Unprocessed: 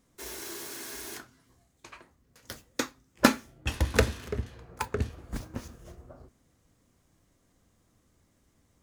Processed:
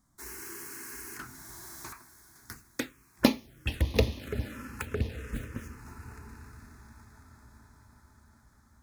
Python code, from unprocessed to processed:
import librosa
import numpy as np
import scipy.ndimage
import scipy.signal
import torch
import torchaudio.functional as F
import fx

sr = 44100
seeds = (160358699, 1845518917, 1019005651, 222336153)

y = fx.echo_diffused(x, sr, ms=1259, feedback_pct=41, wet_db=-14)
y = fx.env_phaser(y, sr, low_hz=460.0, high_hz=1500.0, full_db=-25.0)
y = fx.leveller(y, sr, passes=3, at=(1.19, 1.93))